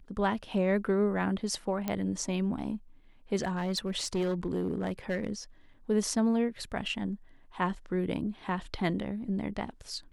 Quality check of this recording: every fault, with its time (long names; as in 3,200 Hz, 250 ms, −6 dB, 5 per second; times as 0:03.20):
0:01.88: click −17 dBFS
0:03.39–0:05.32: clipping −25.5 dBFS